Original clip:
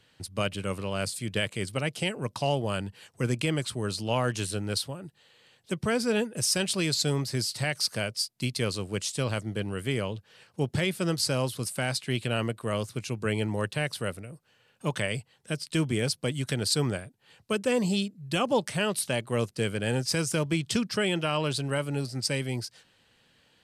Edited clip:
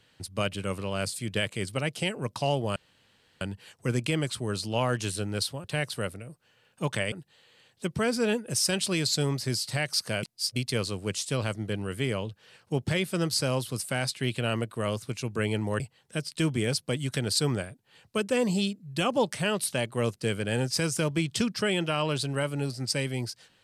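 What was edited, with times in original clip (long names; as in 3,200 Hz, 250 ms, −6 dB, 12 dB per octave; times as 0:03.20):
0:02.76: splice in room tone 0.65 s
0:08.10–0:08.43: reverse
0:13.67–0:15.15: move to 0:04.99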